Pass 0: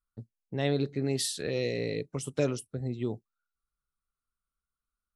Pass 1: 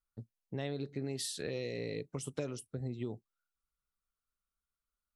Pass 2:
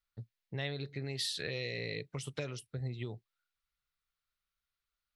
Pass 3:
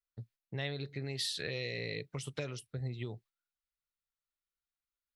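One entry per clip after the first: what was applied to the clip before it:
downward compressor 5 to 1, threshold −31 dBFS, peak gain reduction 9 dB; level −3 dB
octave-band graphic EQ 125/250/2,000/4,000/8,000 Hz +5/−6/+8/+8/−4 dB; level −1.5 dB
noise gate −60 dBFS, range −10 dB

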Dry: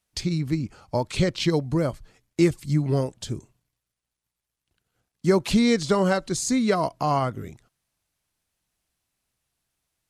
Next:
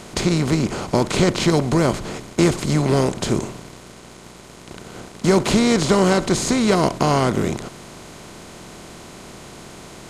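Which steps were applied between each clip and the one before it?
compressor on every frequency bin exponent 0.4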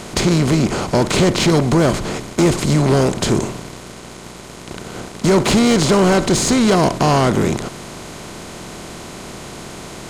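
soft clipping −14.5 dBFS, distortion −12 dB
level +6.5 dB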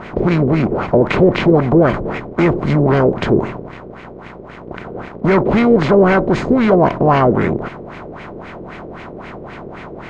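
auto-filter low-pass sine 3.8 Hz 440–2,300 Hz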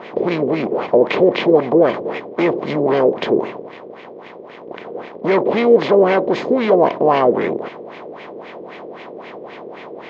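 loudspeaker in its box 310–6,000 Hz, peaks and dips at 480 Hz +5 dB, 1,400 Hz −9 dB, 3,400 Hz +4 dB
level −1 dB

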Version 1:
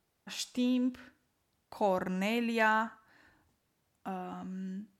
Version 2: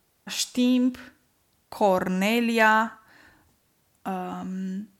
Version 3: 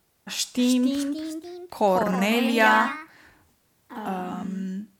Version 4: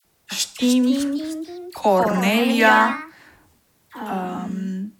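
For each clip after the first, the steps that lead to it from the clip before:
high-shelf EQ 6,300 Hz +6 dB; level +8.5 dB
delay with pitch and tempo change per echo 343 ms, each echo +2 semitones, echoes 3, each echo −6 dB
all-pass dispersion lows, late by 50 ms, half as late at 1,200 Hz; level +4 dB

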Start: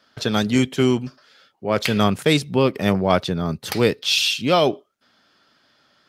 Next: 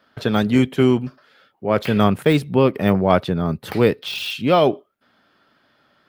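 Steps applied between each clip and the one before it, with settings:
de-essing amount 50%
parametric band 6,100 Hz −13 dB 1.5 octaves
level +2.5 dB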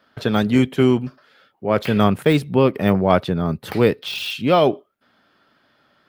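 no processing that can be heard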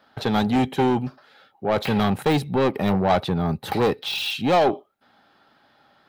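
soft clipping −15.5 dBFS, distortion −9 dB
hollow resonant body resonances 810/3,900 Hz, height 12 dB, ringing for 30 ms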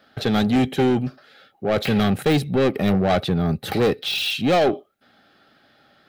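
parametric band 950 Hz −14.5 dB 0.38 octaves
in parallel at −10 dB: soft clipping −27.5 dBFS, distortion −8 dB
on the sum: level +1.5 dB

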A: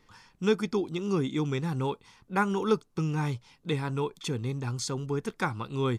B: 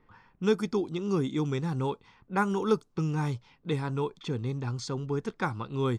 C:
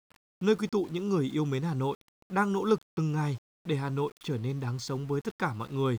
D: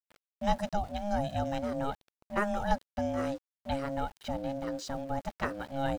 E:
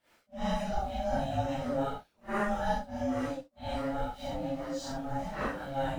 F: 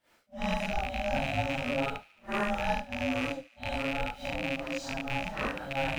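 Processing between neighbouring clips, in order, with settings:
low-pass that shuts in the quiet parts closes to 1,700 Hz, open at −23 dBFS; dynamic equaliser 2,500 Hz, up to −4 dB, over −50 dBFS, Q 1.2
centre clipping without the shift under −47 dBFS
ring modulation 410 Hz
random phases in long frames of 200 ms
loose part that buzzes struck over −40 dBFS, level −22 dBFS; delay with a high-pass on its return 73 ms, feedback 71%, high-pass 1,700 Hz, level −20.5 dB

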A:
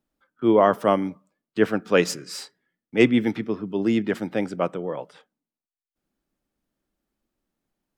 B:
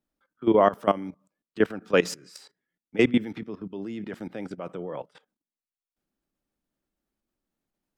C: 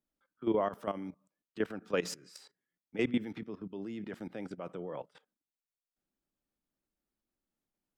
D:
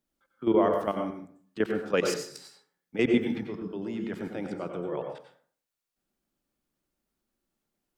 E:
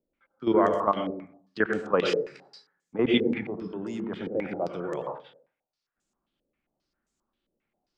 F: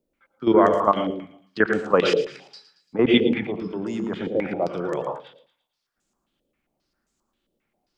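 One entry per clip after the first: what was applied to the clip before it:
output level in coarse steps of 17 dB
brickwall limiter −14 dBFS, peak gain reduction 8.5 dB; level −6 dB
dense smooth reverb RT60 0.51 s, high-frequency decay 0.6×, pre-delay 80 ms, DRR 3.5 dB; level +5.5 dB
low-pass on a step sequencer 7.5 Hz 500–7,200 Hz
delay with a high-pass on its return 113 ms, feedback 45%, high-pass 3,000 Hz, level −11 dB; level +5.5 dB

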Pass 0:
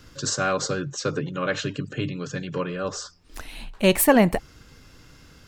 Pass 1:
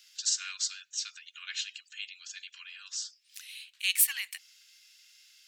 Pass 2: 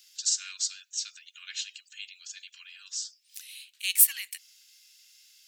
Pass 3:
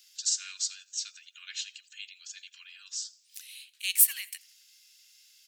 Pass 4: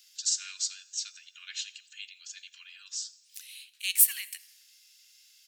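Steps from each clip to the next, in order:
inverse Chebyshev high-pass filter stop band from 540 Hz, stop band 70 dB; level −1 dB
spectral tilt +3.5 dB per octave; level −7 dB
repeating echo 84 ms, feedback 47%, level −23.5 dB; level −1.5 dB
convolution reverb RT60 1.4 s, pre-delay 3 ms, DRR 19 dB

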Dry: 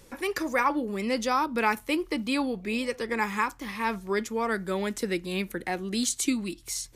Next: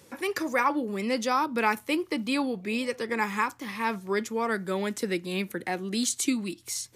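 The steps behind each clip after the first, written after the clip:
high-pass filter 91 Hz 24 dB per octave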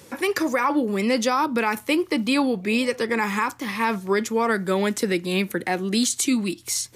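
brickwall limiter −19.5 dBFS, peak gain reduction 7.5 dB
level +7.5 dB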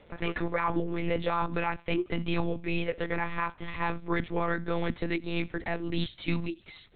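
delay with a high-pass on its return 77 ms, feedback 45%, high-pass 2,600 Hz, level −22 dB
one-pitch LPC vocoder at 8 kHz 170 Hz
level −7 dB

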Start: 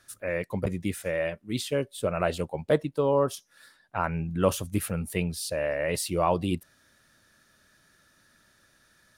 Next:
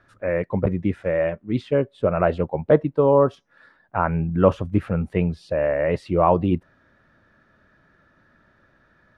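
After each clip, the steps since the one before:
low-pass filter 1,500 Hz 12 dB per octave
level +7.5 dB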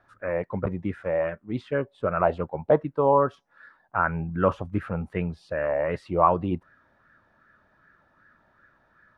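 auto-filter bell 2.6 Hz 770–1,600 Hz +12 dB
level −7 dB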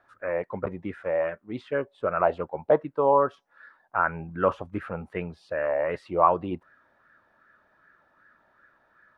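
bass and treble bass −9 dB, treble −3 dB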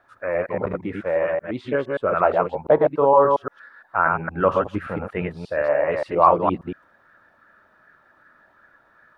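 delay that plays each chunk backwards 116 ms, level −2.5 dB
level +4 dB

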